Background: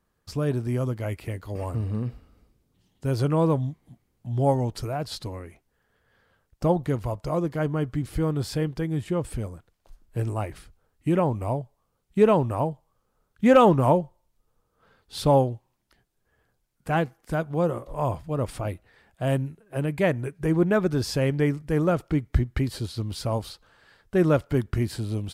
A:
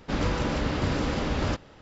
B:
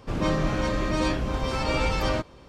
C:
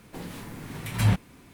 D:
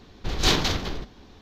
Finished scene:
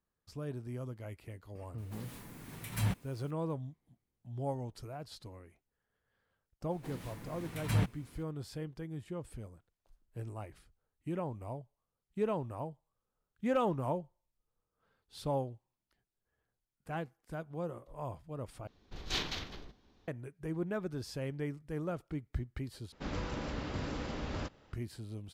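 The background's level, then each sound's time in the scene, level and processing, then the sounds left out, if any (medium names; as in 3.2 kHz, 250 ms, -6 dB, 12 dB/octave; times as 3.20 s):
background -15 dB
1.78 s: add C -10.5 dB + treble shelf 8.7 kHz +9 dB
6.70 s: add C -8.5 dB
18.67 s: replace with D -17.5 dB + dynamic bell 2.6 kHz, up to +6 dB, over -36 dBFS, Q 0.74
22.92 s: replace with A -11.5 dB
not used: B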